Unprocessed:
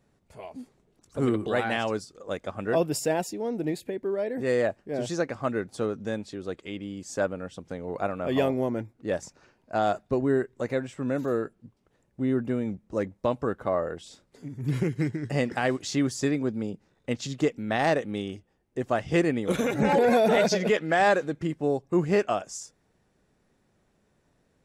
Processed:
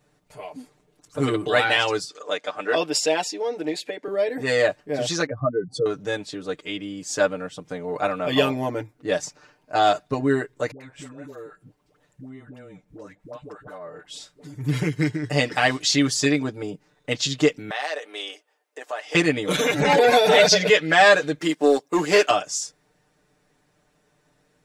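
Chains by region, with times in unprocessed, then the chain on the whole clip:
0:02.09–0:04.08: band-pass filter 330–7,300 Hz + one half of a high-frequency compander encoder only
0:05.26–0:05.86: expanding power law on the bin magnitudes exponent 2.4 + parametric band 130 Hz +8 dB 0.87 octaves
0:10.71–0:14.54: downward compressor 5 to 1, threshold −41 dBFS + all-pass dispersion highs, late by 95 ms, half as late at 560 Hz
0:17.70–0:19.15: high-pass filter 470 Hz 24 dB per octave + downward compressor 3 to 1, threshold −34 dBFS
0:21.39–0:22.31: high-pass filter 230 Hz 24 dB per octave + high-shelf EQ 4,600 Hz +6.5 dB + leveller curve on the samples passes 1
whole clip: low-shelf EQ 440 Hz −7 dB; comb filter 6.7 ms, depth 95%; dynamic equaliser 3,900 Hz, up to +8 dB, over −46 dBFS, Q 0.87; level +4.5 dB

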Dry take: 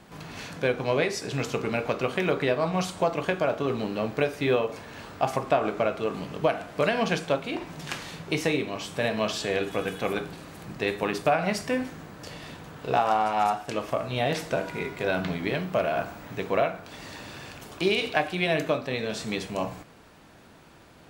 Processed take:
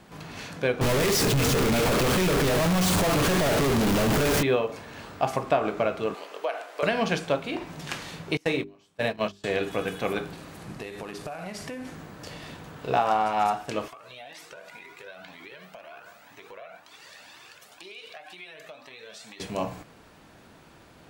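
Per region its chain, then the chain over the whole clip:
0:00.81–0:04.43: sign of each sample alone + low-shelf EQ 250 Hz +8 dB + envelope flattener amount 70%
0:06.14–0:06.83: high-pass filter 430 Hz 24 dB per octave + downward compressor 2 to 1, threshold −27 dBFS
0:08.37–0:09.44: noise gate −28 dBFS, range −27 dB + mains-hum notches 50/100/150/200/250/300/350/400 Hz
0:10.59–0:11.95: variable-slope delta modulation 64 kbit/s + downward compressor 20 to 1, threshold −32 dBFS
0:13.88–0:19.40: high-pass filter 1,000 Hz 6 dB per octave + downward compressor, threshold −36 dBFS + flanger whose copies keep moving one way rising 2 Hz
whole clip: no processing

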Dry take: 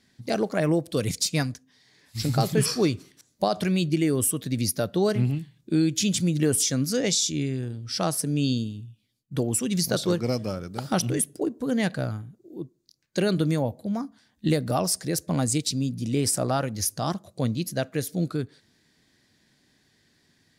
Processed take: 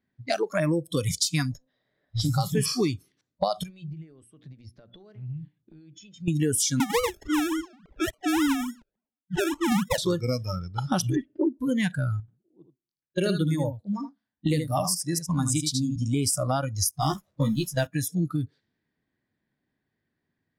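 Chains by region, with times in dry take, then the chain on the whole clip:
0:01.51–0:02.21: lower of the sound and its delayed copy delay 0.58 ms + high-shelf EQ 8,800 Hz −12 dB + hollow resonant body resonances 600/3,900 Hz, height 16 dB, ringing for 20 ms
0:03.63–0:06.28: mains-hum notches 60/120/180/240/300/360 Hz + downward compressor 16 to 1, threshold −35 dBFS
0:06.80–0:09.98: three sine waves on the formant tracks + sample-and-hold swept by an LFO 35×, swing 60% 3.5 Hz
0:11.16–0:11.59: low-pass filter 2,600 Hz 24 dB per octave + comb filter 3.3 ms, depth 92%
0:12.20–0:15.96: single-tap delay 78 ms −4.5 dB + expander for the loud parts, over −40 dBFS
0:16.91–0:17.87: converter with a step at zero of −33.5 dBFS + downward expander −25 dBFS + double-tracking delay 14 ms −3 dB
whole clip: low-pass that shuts in the quiet parts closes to 1,800 Hz, open at −23.5 dBFS; noise reduction from a noise print of the clip's start 20 dB; downward compressor 3 to 1, threshold −31 dBFS; level +7 dB

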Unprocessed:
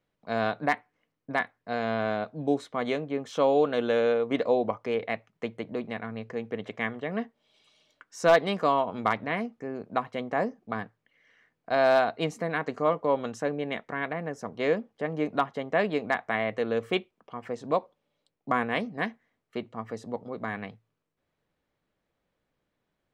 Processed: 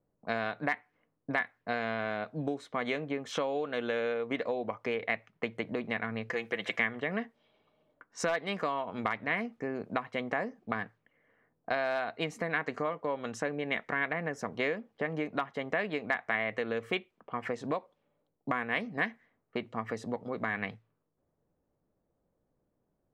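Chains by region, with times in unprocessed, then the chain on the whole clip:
0:06.30–0:06.80: spectral tilt +2.5 dB per octave + comb filter 5.9 ms, depth 53%
whole clip: downward compressor 6 to 1, threshold −34 dBFS; low-pass that shuts in the quiet parts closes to 710 Hz, open at −38.5 dBFS; dynamic equaliser 2,000 Hz, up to +8 dB, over −55 dBFS, Q 1.2; level +3 dB

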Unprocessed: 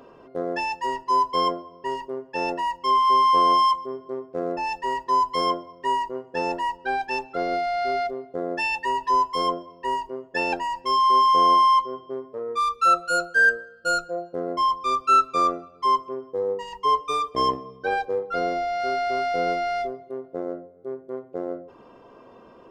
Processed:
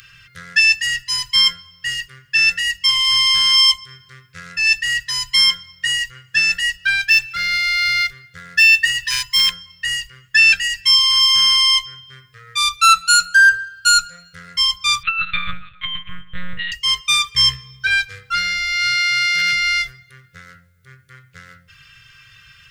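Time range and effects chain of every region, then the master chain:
0:07.08–0:09.54: running median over 3 samples + hard clipping −16 dBFS
0:15.03–0:16.72: compressor whose output falls as the input rises −23 dBFS, ratio −0.5 + one-pitch LPC vocoder at 8 kHz 180 Hz + bad sample-rate conversion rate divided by 2×, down none, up filtered
0:18.95–0:19.53: high-pass filter 130 Hz + hard clipping −16.5 dBFS
whole clip: inverse Chebyshev band-stop filter 220–990 Hz, stop band 40 dB; spectral tilt +1.5 dB per octave; boost into a limiter +20.5 dB; level −3 dB

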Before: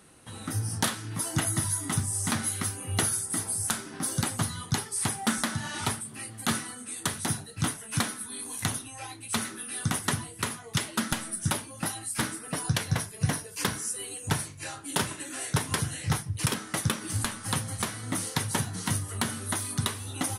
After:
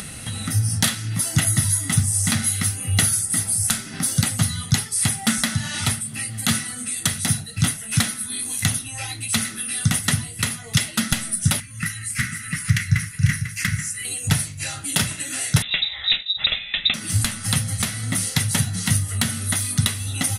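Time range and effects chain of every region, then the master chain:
0:11.60–0:14.05: drawn EQ curve 110 Hz 0 dB, 180 Hz −3 dB, 750 Hz −27 dB, 1,200 Hz −4 dB, 2,000 Hz +5 dB, 3,500 Hz −10 dB, 6,600 Hz −4 dB, 11,000 Hz −8 dB + single-tap delay 496 ms −8.5 dB
0:15.62–0:16.94: high-frequency loss of the air 100 metres + voice inversion scrambler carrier 3,800 Hz
whole clip: flat-topped bell 660 Hz −9.5 dB 2.4 octaves; comb filter 1.5 ms, depth 35%; upward compression, threshold −31 dBFS; level +8.5 dB

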